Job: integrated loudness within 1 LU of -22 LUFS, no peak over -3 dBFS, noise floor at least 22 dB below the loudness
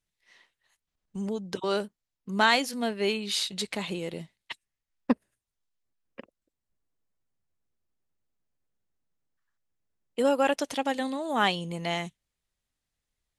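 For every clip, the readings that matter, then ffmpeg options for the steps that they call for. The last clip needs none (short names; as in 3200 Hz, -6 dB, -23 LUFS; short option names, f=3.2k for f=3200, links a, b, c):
loudness -28.5 LUFS; peak -7.0 dBFS; loudness target -22.0 LUFS
-> -af "volume=6.5dB,alimiter=limit=-3dB:level=0:latency=1"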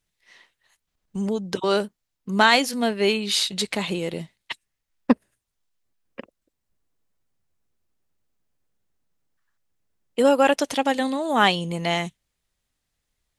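loudness -22.5 LUFS; peak -3.0 dBFS; noise floor -80 dBFS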